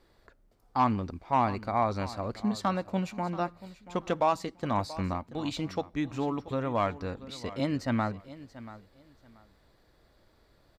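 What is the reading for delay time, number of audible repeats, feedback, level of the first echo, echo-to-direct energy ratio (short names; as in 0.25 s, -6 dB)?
0.683 s, 2, 22%, -16.5 dB, -16.5 dB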